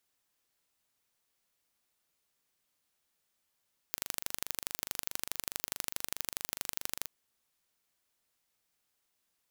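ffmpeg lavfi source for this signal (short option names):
-f lavfi -i "aevalsrc='0.531*eq(mod(n,1785),0)*(0.5+0.5*eq(mod(n,3570),0))':d=3.13:s=44100"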